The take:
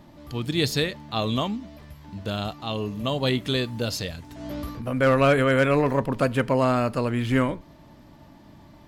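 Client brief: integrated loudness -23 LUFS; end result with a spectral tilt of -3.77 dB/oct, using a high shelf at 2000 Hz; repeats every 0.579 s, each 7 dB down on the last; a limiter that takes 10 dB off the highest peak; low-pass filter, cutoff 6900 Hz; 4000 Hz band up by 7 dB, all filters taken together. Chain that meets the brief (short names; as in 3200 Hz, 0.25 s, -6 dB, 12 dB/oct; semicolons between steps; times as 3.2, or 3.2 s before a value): LPF 6900 Hz; high shelf 2000 Hz +3.5 dB; bell 4000 Hz +5.5 dB; limiter -15 dBFS; feedback echo 0.579 s, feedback 45%, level -7 dB; gain +2.5 dB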